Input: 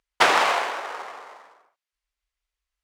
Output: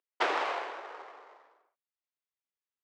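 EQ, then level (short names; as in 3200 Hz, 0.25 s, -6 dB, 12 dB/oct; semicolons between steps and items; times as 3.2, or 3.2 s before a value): ladder high-pass 280 Hz, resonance 40%; air absorption 110 m; -3.5 dB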